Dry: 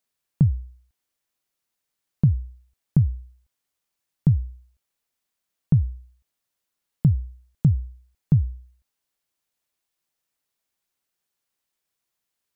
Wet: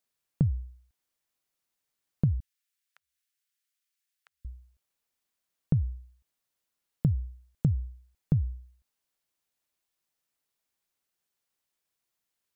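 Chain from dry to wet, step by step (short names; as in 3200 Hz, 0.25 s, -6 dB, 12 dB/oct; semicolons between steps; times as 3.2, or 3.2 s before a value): compressor, threshold -18 dBFS, peak gain reduction 6 dB; 2.4–4.45 inverse Chebyshev high-pass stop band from 330 Hz, stop band 70 dB; gain -2.5 dB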